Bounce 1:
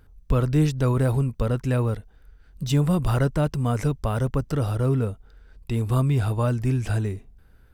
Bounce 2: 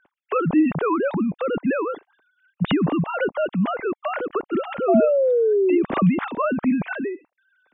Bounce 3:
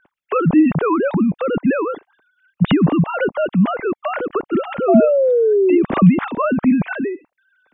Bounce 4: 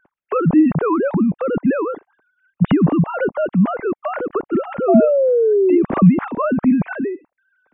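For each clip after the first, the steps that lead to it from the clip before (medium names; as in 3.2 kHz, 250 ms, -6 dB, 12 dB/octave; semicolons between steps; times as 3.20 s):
formants replaced by sine waves; painted sound fall, 4.88–5.83 s, 330–700 Hz -18 dBFS
tone controls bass +5 dB, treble -3 dB; trim +3.5 dB
Gaussian low-pass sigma 3.7 samples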